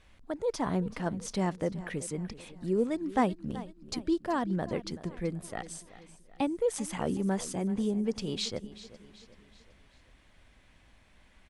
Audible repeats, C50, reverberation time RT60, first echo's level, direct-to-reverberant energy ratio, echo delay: 3, none, none, -16.5 dB, none, 0.381 s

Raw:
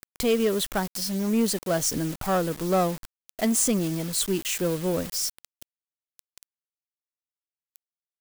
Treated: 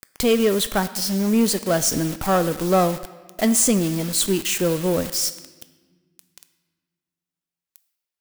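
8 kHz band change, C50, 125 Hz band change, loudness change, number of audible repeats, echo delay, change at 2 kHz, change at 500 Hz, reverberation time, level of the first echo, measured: +5.5 dB, 13.5 dB, +5.0 dB, +5.0 dB, none, none, +5.5 dB, +5.0 dB, 1.4 s, none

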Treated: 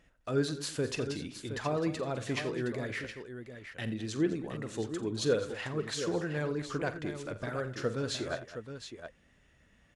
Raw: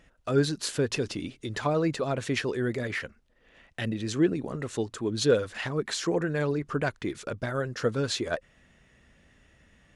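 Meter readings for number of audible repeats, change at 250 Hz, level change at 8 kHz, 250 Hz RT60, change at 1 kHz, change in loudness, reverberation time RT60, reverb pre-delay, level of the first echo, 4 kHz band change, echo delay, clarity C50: 4, -5.0 dB, -5.0 dB, none, -5.0 dB, -5.5 dB, none, none, -13.0 dB, -5.0 dB, 46 ms, none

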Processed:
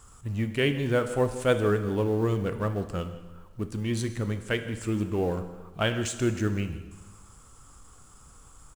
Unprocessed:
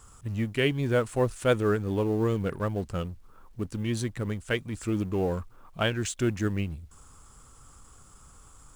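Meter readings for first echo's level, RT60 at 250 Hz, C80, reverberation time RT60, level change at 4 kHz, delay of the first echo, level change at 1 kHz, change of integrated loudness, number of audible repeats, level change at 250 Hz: -19.5 dB, 1.2 s, 11.5 dB, 1.3 s, +0.5 dB, 0.158 s, +0.5 dB, +0.5 dB, 1, +0.5 dB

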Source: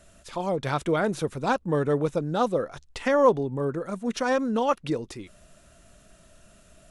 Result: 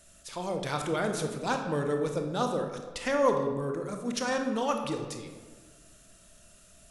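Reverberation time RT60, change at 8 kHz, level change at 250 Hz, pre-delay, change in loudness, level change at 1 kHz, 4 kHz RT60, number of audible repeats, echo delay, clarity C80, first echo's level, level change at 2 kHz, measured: 1.4 s, +3.5 dB, -4.5 dB, 24 ms, -4.5 dB, -4.5 dB, 0.75 s, none, none, 8.0 dB, none, -3.0 dB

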